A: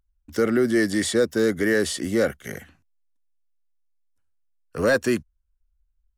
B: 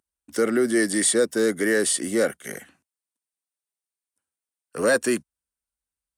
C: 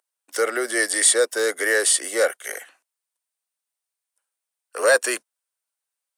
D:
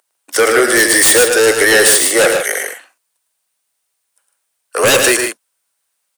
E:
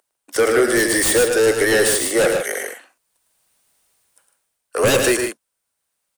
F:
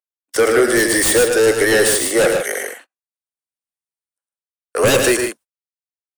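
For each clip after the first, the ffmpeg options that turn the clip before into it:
-af "highpass=210,equalizer=f=9k:t=o:w=0.36:g=13.5"
-af "highpass=f=500:w=0.5412,highpass=f=500:w=1.3066,volume=5dB"
-filter_complex "[0:a]aeval=exprs='0.668*sin(PI/2*4.47*val(0)/0.668)':c=same,asplit=2[a][b];[b]aecho=0:1:107.9|151.6:0.501|0.355[c];[a][c]amix=inputs=2:normalize=0,volume=-3dB"
-af "lowshelf=f=440:g=11,dynaudnorm=f=170:g=7:m=11.5dB,volume=-5dB"
-af "agate=range=-35dB:threshold=-40dB:ratio=16:detection=peak,volume=2dB"

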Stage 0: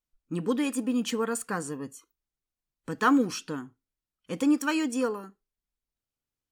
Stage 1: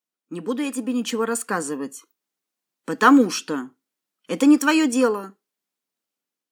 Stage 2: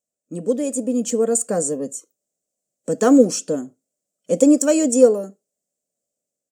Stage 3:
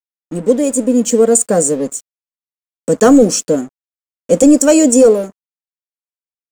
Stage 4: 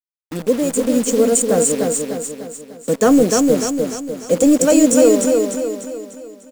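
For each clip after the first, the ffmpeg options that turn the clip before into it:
-af "highpass=f=200:w=0.5412,highpass=f=200:w=1.3066,dynaudnorm=f=530:g=5:m=8dB,volume=1.5dB"
-af "firequalizer=gain_entry='entry(110,0);entry(330,-9);entry(590,6);entry(910,-21);entry(3900,-17);entry(7400,4);entry(11000,-11)':delay=0.05:min_phase=1,volume=8dB"
-af "apsyclip=10.5dB,aeval=exprs='sgn(val(0))*max(abs(val(0))-0.0211,0)':c=same,volume=-1.5dB"
-filter_complex "[0:a]acrusher=bits=5:dc=4:mix=0:aa=0.000001,asplit=2[a][b];[b]aecho=0:1:298|596|894|1192|1490|1788:0.631|0.297|0.139|0.0655|0.0308|0.0145[c];[a][c]amix=inputs=2:normalize=0,volume=-4.5dB"

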